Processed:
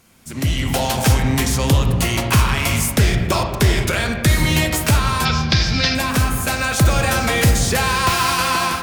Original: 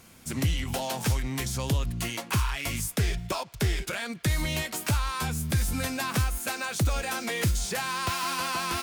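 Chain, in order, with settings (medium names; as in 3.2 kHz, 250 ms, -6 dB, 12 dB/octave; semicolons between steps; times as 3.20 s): 5.25–5.95 s: FFT filter 1 kHz 0 dB, 5.2 kHz +14 dB, 9.4 kHz -27 dB; level rider gain up to 13.5 dB; on a send: reverberation RT60 2.0 s, pre-delay 5 ms, DRR 4 dB; on the sum: trim -1.5 dB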